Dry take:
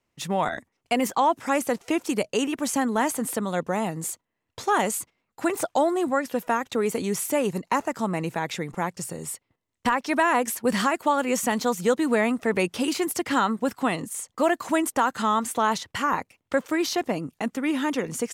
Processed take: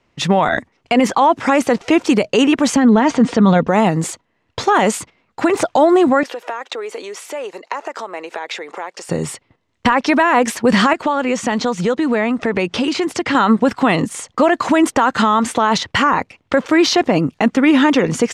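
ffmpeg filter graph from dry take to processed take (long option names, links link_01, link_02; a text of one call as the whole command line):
ffmpeg -i in.wav -filter_complex "[0:a]asettb=1/sr,asplit=3[link_01][link_02][link_03];[link_01]atrim=end=2.764[link_04];[link_02]atrim=start=2.76:end=3.68,asetpts=PTS-STARTPTS,afade=type=in:duration=0.004:curve=qsin,afade=type=out:start_time=0.916:duration=0.004:curve=qsin,lowpass=frequency=6000:width=0.5412,lowpass=frequency=6000:width=1.3066,lowshelf=frequency=250:gain=8.5,aecho=1:1:4.3:0.33,atrim=end_sample=40572[link_05];[link_03]atrim=start=3.676[link_06];[link_04][link_05]acrossfade=duration=0.004:curve1=hsin:curve2=qsin[link_07];[link_07][link_06]acrossfade=duration=0.004:curve1=qsin:curve2=hsin,asettb=1/sr,asplit=3[link_08][link_09][link_10];[link_08]atrim=end=6.234[link_11];[link_09]atrim=start=6.23:end=9.09,asetpts=PTS-STARTPTS,afade=type=in:duration=0.004:curve=qsin,afade=type=out:start_time=2.856:duration=0.004:curve=qsin,acompressor=threshold=-35dB:ratio=10:attack=3.2:release=140:knee=1:detection=peak,highpass=frequency=400:width=0.5412,highpass=frequency=400:width=1.3066[link_12];[link_10]atrim=start=9.086[link_13];[link_11][link_12]acrossfade=duration=0.004:curve1=hsin:curve2=qsin[link_14];[link_14][link_13]acrossfade=duration=0.004:curve1=qsin:curve2=hsin,asettb=1/sr,asplit=3[link_15][link_16][link_17];[link_15]atrim=end=10.934[link_18];[link_16]atrim=start=10.93:end=13.35,asetpts=PTS-STARTPTS,afade=type=in:duration=0.004:curve=qsin,afade=type=out:start_time=2.416:duration=0.004:curve=qsin,lowpass=9200,acompressor=threshold=-32dB:ratio=3:attack=3.2:release=140:knee=1:detection=peak[link_19];[link_17]atrim=start=13.346[link_20];[link_18][link_19]acrossfade=duration=0.004:curve1=hsin:curve2=qsin[link_21];[link_21][link_20]acrossfade=duration=0.004:curve1=qsin:curve2=hsin,lowpass=4700,alimiter=level_in=19dB:limit=-1dB:release=50:level=0:latency=1,volume=-3.5dB" out.wav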